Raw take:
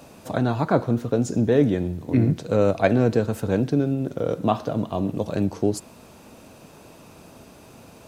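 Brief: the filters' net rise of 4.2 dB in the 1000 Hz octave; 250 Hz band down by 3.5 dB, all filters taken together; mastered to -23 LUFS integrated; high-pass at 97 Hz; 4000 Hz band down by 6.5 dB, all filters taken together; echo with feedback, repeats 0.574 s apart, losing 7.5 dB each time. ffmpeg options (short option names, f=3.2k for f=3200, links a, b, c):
-af "highpass=97,equalizer=f=250:t=o:g=-4.5,equalizer=f=1k:t=o:g=7,equalizer=f=4k:t=o:g=-8.5,aecho=1:1:574|1148|1722|2296|2870:0.422|0.177|0.0744|0.0312|0.0131,volume=0.5dB"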